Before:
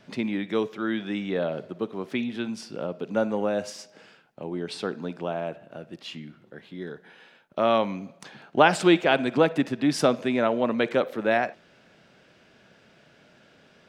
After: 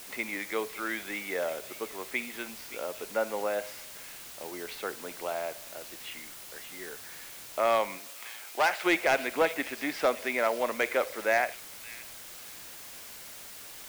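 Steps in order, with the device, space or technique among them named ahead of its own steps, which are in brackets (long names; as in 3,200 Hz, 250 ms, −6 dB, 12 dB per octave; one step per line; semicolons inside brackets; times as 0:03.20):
drive-through speaker (band-pass filter 530–2,900 Hz; parametric band 2,100 Hz +10 dB 0.31 octaves; hard clipping −15.5 dBFS, distortion −14 dB; white noise bed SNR 13 dB)
0:07.97–0:08.84: high-pass filter 430 Hz → 980 Hz 6 dB per octave
echo through a band-pass that steps 571 ms, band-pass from 3,300 Hz, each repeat 0.7 octaves, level −9.5 dB
level −1.5 dB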